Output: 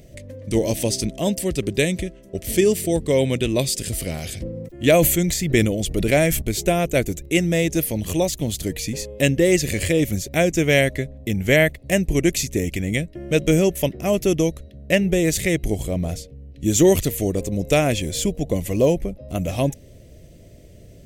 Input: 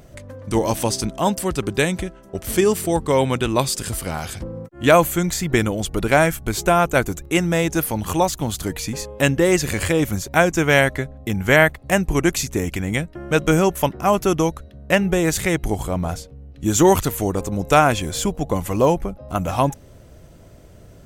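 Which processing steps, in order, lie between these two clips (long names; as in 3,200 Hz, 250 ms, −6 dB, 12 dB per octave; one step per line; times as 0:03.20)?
flat-topped bell 1,100 Hz −15.5 dB 1.2 octaves
0:03.97–0:06.42: level that may fall only so fast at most 50 dB per second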